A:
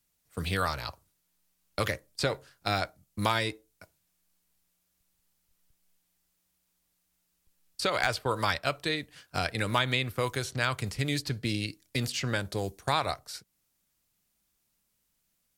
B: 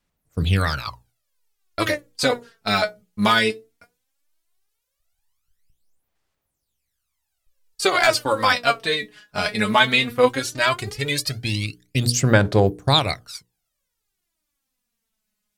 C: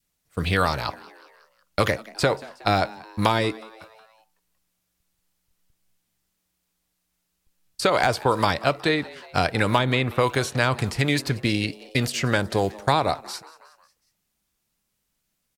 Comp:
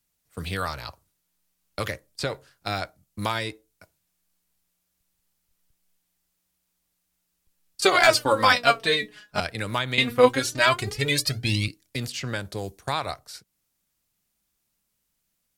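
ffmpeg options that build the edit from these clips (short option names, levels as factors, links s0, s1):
-filter_complex "[1:a]asplit=2[s0][s1];[0:a]asplit=3[s2][s3][s4];[s2]atrim=end=7.822[s5];[s0]atrim=start=7.818:end=9.402[s6];[s3]atrim=start=9.398:end=9.982[s7];[s1]atrim=start=9.978:end=11.682[s8];[s4]atrim=start=11.678[s9];[s5][s6]acrossfade=d=0.004:c1=hsin:c2=hsin[s10];[s10][s7]acrossfade=d=0.004:c1=hsin:c2=hsin[s11];[s11][s8]acrossfade=d=0.004:c1=hsin:c2=hsin[s12];[s12][s9]acrossfade=d=0.004:c1=hsin:c2=hsin"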